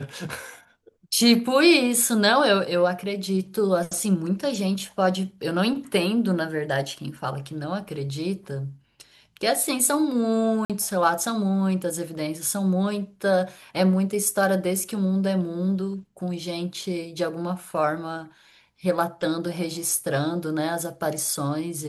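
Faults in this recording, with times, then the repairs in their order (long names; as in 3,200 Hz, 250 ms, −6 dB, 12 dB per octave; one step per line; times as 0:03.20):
0:10.65–0:10.70: drop-out 47 ms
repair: repair the gap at 0:10.65, 47 ms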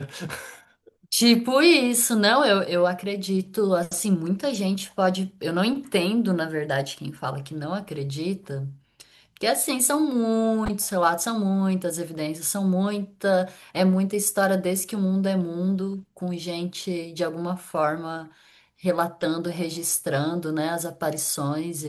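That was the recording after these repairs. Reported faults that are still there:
none of them is left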